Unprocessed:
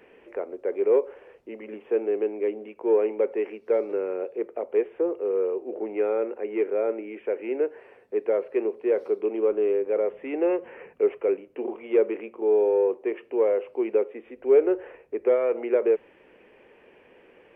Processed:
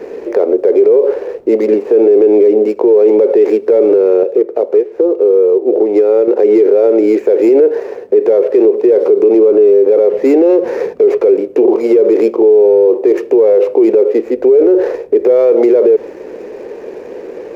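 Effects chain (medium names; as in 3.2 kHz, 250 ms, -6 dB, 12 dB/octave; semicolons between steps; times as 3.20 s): median filter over 15 samples; peaking EQ 420 Hz +12.5 dB 1.4 oct; 4.23–6.28 s: compression 6:1, threshold -25 dBFS, peak gain reduction 18 dB; loudness maximiser +19 dB; trim -1 dB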